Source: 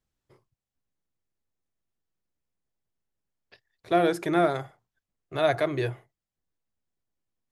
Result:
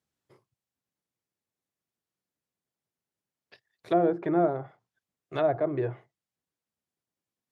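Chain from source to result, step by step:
high-pass filter 120 Hz 12 dB per octave
treble cut that deepens with the level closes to 800 Hz, closed at −22.5 dBFS

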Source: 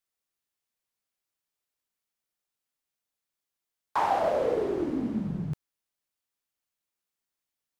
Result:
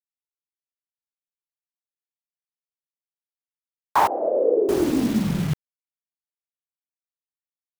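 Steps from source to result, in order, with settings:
bit reduction 7 bits
0:04.07–0:04.69: flat-topped band-pass 410 Hz, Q 1.5
level +8.5 dB

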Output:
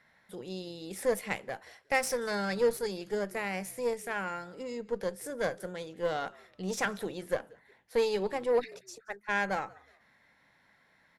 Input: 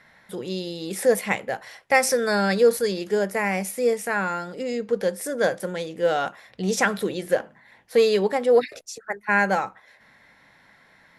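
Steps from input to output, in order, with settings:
echo with shifted repeats 182 ms, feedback 30%, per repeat −59 Hz, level −23.5 dB
harmonic generator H 3 −23 dB, 6 −24 dB, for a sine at −6 dBFS
level −8.5 dB

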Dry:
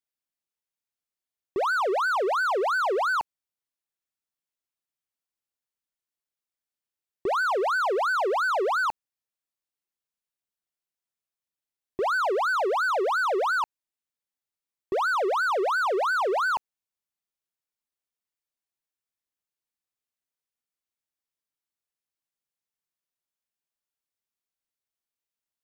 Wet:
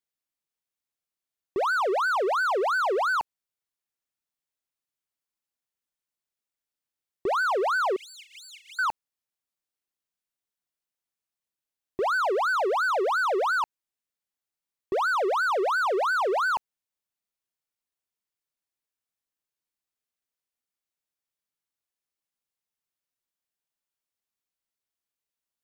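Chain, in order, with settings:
0:07.96–0:08.79: Chebyshev high-pass with heavy ripple 2,100 Hz, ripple 6 dB

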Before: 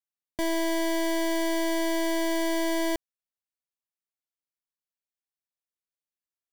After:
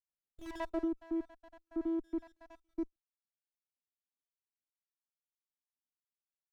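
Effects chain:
time-frequency cells dropped at random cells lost 82%
band-pass filter sweep 6,900 Hz → 240 Hz, 0:00.31–0:00.86
0:01.10–0:01.99: high-shelf EQ 2,200 Hz −9.5 dB
windowed peak hold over 17 samples
level +2.5 dB

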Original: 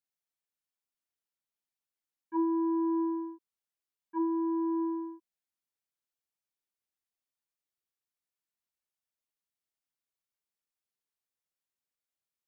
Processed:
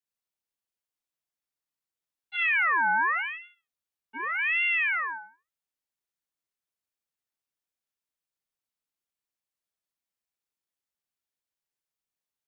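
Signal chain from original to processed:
dynamic equaliser 1,300 Hz, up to +7 dB, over −58 dBFS, Q 2.4
0:03.16–0:03.40: gain on a spectral selection 350–1,400 Hz +12 dB
0:03.11–0:04.39: downward compressor 2.5 to 1, threshold −33 dBFS, peak gain reduction 5.5 dB
repeating echo 64 ms, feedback 22%, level −4 dB
convolution reverb, pre-delay 7 ms, DRR 4 dB
ring modulator whose carrier an LFO sweeps 1,800 Hz, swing 35%, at 0.86 Hz

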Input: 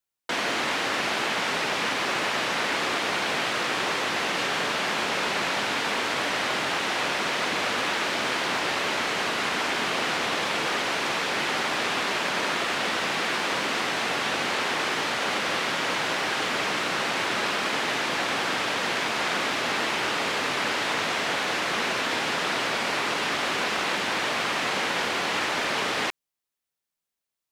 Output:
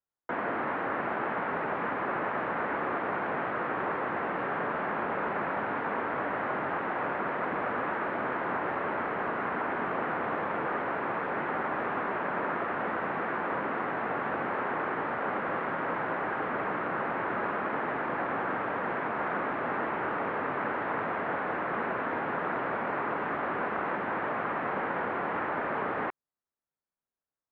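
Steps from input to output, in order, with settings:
low-pass filter 1,600 Hz 24 dB per octave
level −2 dB

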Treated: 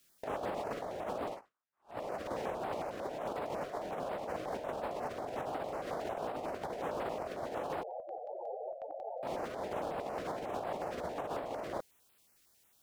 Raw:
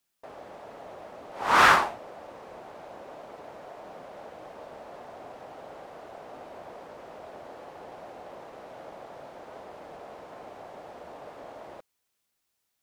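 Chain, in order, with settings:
compressor whose output falls as the input rises −46 dBFS, ratio −0.5
0:07.83–0:09.23: spectral peaks only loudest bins 8
notch on a step sequencer 11 Hz 880–6,100 Hz
level +3 dB

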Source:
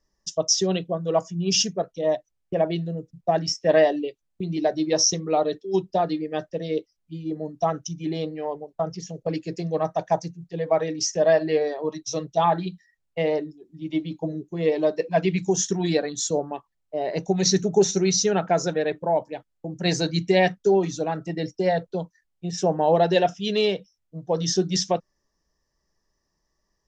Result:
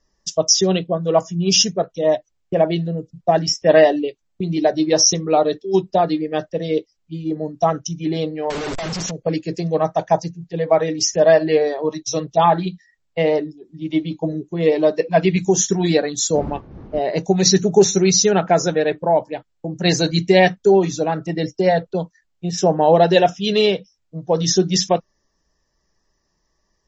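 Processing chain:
0:08.50–0:09.11: sign of each sample alone
0:16.34–0:16.98: wind on the microphone 280 Hz −37 dBFS
level +6.5 dB
MP3 32 kbit/s 32,000 Hz

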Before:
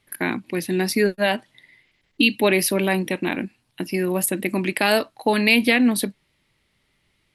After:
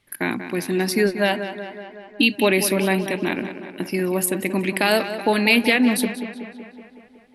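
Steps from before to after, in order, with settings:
tape delay 186 ms, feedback 70%, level −9.5 dB, low-pass 3,700 Hz

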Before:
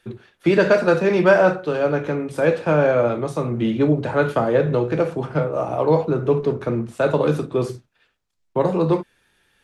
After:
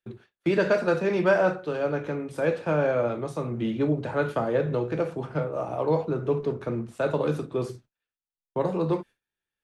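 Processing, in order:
noise gate with hold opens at −32 dBFS
level −7 dB

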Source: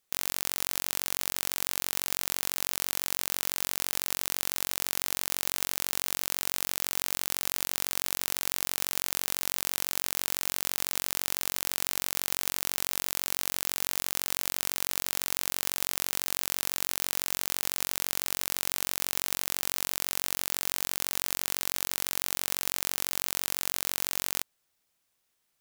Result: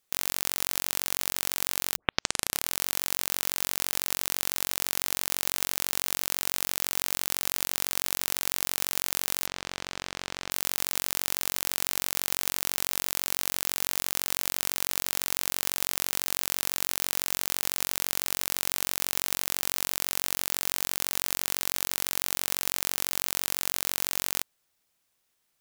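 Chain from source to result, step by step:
0:01.96: tape start 0.79 s
0:09.47–0:10.51: high-frequency loss of the air 120 metres
level +1.5 dB

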